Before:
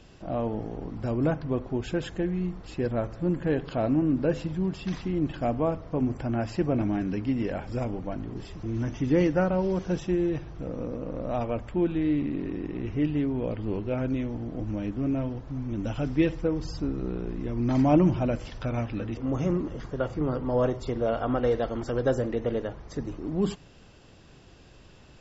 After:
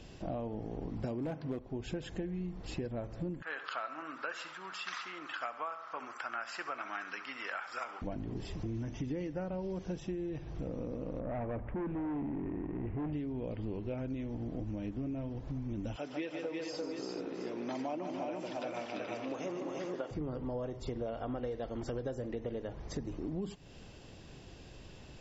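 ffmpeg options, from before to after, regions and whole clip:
-filter_complex "[0:a]asettb=1/sr,asplit=3[a][b][c];[a]atrim=end=1.044[d];[b]atrim=start=1.04:end=1.59,asetpts=PTS-STARTPTS,afade=t=in:d=0.004:c=qsin,afade=t=out:st=0.546:d=0.004:c=qsin,highpass=140,acontrast=75,volume=14.5dB,asoftclip=hard,volume=-14.5dB[e];[c]atrim=start=1.586[f];[d][e]acrossfade=d=0.004:c1=hsin:c2=qsin[g];[g][f]acrossfade=d=0.004:c1=qsin:c2=hsin,asettb=1/sr,asplit=3[h][i][j];[h]atrim=end=3.424[k];[i]atrim=start=3.42:end=8.02,asetpts=PTS-STARTPTS,afade=t=in:d=0.004:c=qsin,afade=t=out:st=4.596:d=0.004:c=qsin,highpass=f=1.3k:t=q:w=7.4,aecho=1:1:69|138|207|276:0.188|0.0885|0.0416|0.0196,atrim=end_sample=202860[l];[j]atrim=start=8.016[m];[k][l]acrossfade=d=0.004:c1=hsin:c2=qsin[n];[n][m]acrossfade=d=0.004:c1=qsin:c2=hsin,asettb=1/sr,asplit=3[o][p][q];[o]atrim=end=11.204[r];[p]atrim=start=11.2:end=13.13,asetpts=PTS-STARTPTS,afade=t=in:d=0.004:c=qsin,afade=t=out:st=1.926:d=0.004:c=qsin,volume=29dB,asoftclip=hard,volume=-29dB,lowpass=f=2k:w=0.5412,lowpass=f=2k:w=1.3066[s];[q]atrim=start=13.126[t];[r][s]acrossfade=d=0.004:c1=hsin:c2=qsin[u];[u][t]acrossfade=d=0.004:c1=qsin:c2=hsin,asettb=1/sr,asplit=3[v][w][x];[v]atrim=end=15.964[y];[w]atrim=start=15.96:end=20.11,asetpts=PTS-STARTPTS,afade=t=in:d=0.004:c=qsin,afade=t=out:st=4.146:d=0.004:c=qsin,highpass=490,aecho=1:1:148|279|345|430|721:0.422|0.15|0.596|0.316|0.188,atrim=end_sample=183015[z];[x]atrim=start=20.106[aa];[y][z]acrossfade=d=0.004:c1=hsin:c2=qsin[ab];[ab][aa]acrossfade=d=0.004:c1=qsin:c2=hsin,equalizer=f=1.3k:t=o:w=0.67:g=-5,acompressor=threshold=-36dB:ratio=10,volume=1dB"

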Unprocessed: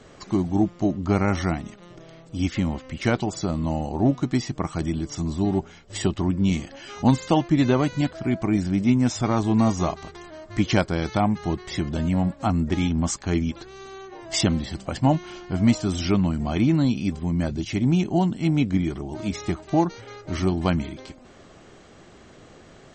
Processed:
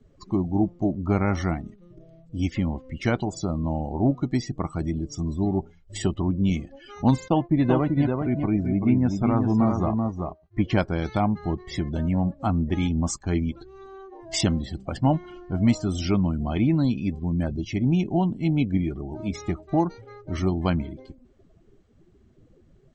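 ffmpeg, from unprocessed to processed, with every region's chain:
-filter_complex "[0:a]asettb=1/sr,asplit=3[a][b][c];[a]atrim=end=7.284[d];[b]atrim=start=7.28:end=10.78,asetpts=PTS-STARTPTS,afade=t=in:d=0.004:c=qsin,afade=t=out:st=3.496:d=0.004:c=qsin,agate=range=-33dB:threshold=-31dB:ratio=3:release=100:detection=peak,highshelf=f=3.6k:g=-11.5,aecho=1:1:386:0.596,atrim=end_sample=154350[e];[c]atrim=start=10.776[f];[d][e]acrossfade=d=0.004:c1=hsin:c2=qsin[g];[g][f]acrossfade=d=0.004:c1=qsin:c2=hsin,lowshelf=f=61:g=6.5,afftdn=nr=21:nf=-37,volume=-2dB"

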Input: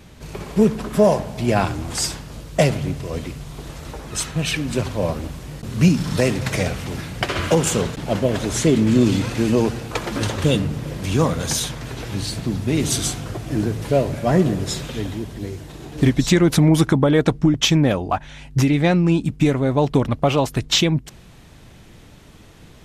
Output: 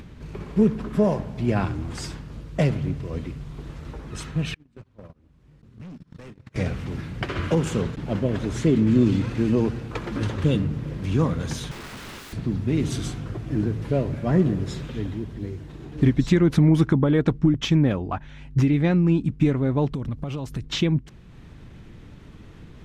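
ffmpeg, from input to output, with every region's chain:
-filter_complex "[0:a]asettb=1/sr,asplit=3[a][b][c];[a]atrim=end=4.544[d];[b]atrim=start=4.54:end=6.56,asetpts=PTS-STARTPTS,afade=t=in:d=0.004:c=qsin,afade=t=out:st=2.016:d=0.004:c=qsin,agate=range=-35dB:threshold=-20dB:ratio=16:release=100:detection=peak,asoftclip=type=hard:threshold=-21.5dB,acompressor=threshold=-38dB:ratio=10:attack=3.2:release=140:knee=1:detection=peak[e];[c]atrim=start=6.556[f];[d][e]acrossfade=d=0.004:c1=hsin:c2=qsin[g];[g][f]acrossfade=d=0.004:c1=qsin:c2=hsin,asettb=1/sr,asplit=3[h][i][j];[h]atrim=end=11.714[k];[i]atrim=start=11.71:end=12.33,asetpts=PTS-STARTPTS,afade=t=in:d=0.004:c=qsin,afade=t=out:st=0.616:d=0.004:c=qsin,lowshelf=f=200:g=-3.5,acontrast=64,aeval=exprs='(mod(17.8*val(0)+1,2)-1)/17.8':c=same[l];[j]atrim=start=12.326[m];[k][l]acrossfade=d=0.004:c1=hsin:c2=qsin[n];[n][m]acrossfade=d=0.004:c1=qsin:c2=hsin,asettb=1/sr,asplit=3[o][p][q];[o]atrim=end=19.924[r];[p]atrim=start=19.92:end=20.64,asetpts=PTS-STARTPTS,afade=t=in:d=0.004:c=qsin,afade=t=out:st=0.716:d=0.004:c=qsin,bass=f=250:g=5,treble=f=4k:g=9,acompressor=threshold=-22dB:ratio=12:attack=3.2:release=140:knee=1:detection=peak[s];[q]atrim=start=20.636[t];[r][s]acrossfade=d=0.004:c1=hsin:c2=qsin[u];[u][t]acrossfade=d=0.004:c1=qsin:c2=hsin,lowpass=f=1.3k:p=1,equalizer=f=680:t=o:w=1.1:g=-7.5,acompressor=mode=upward:threshold=-35dB:ratio=2.5,volume=-1.5dB"

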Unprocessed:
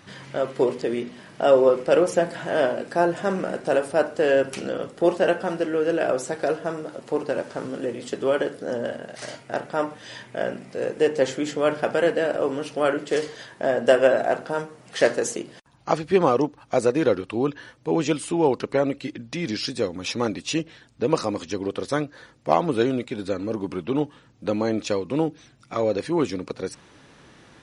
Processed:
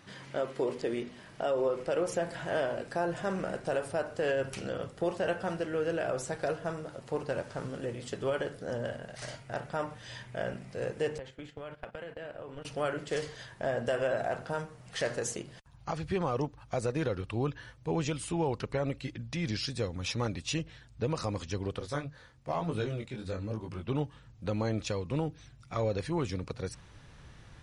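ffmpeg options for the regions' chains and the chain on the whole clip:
-filter_complex "[0:a]asettb=1/sr,asplit=3[a][b][c];[a]atrim=end=11.184[d];[b]atrim=start=11.18:end=12.65,asetpts=PTS-STARTPTS,afade=t=in:d=0.004:c=qsin,afade=t=out:st=1.466:d=0.004:c=qsin,agate=range=-19dB:threshold=-28dB:ratio=16:release=100:detection=peak,highshelf=f=4.3k:t=q:w=1.5:g=-7,acompressor=threshold=-30dB:ratio=20:attack=3.2:release=140:knee=1:detection=peak[e];[c]atrim=start=12.646[f];[d][e]acrossfade=d=0.004:c1=hsin:c2=qsin[g];[g][f]acrossfade=d=0.004:c1=qsin:c2=hsin,asettb=1/sr,asplit=3[h][i][j];[h]atrim=end=21.794[k];[i]atrim=start=21.79:end=23.88,asetpts=PTS-STARTPTS,afade=t=in:d=0.004:c=qsin,afade=t=out:st=2.086:d=0.004:c=qsin,bandreject=f=50:t=h:w=6,bandreject=f=100:t=h:w=6,bandreject=f=150:t=h:w=6,flanger=delay=18.5:depth=5:speed=1.1[l];[j]atrim=start=23.876[m];[k][l]acrossfade=d=0.004:c1=hsin:c2=qsin[n];[n][m]acrossfade=d=0.004:c1=qsin:c2=hsin,asubboost=boost=9:cutoff=92,alimiter=limit=-15.5dB:level=0:latency=1:release=101,volume=-6dB"

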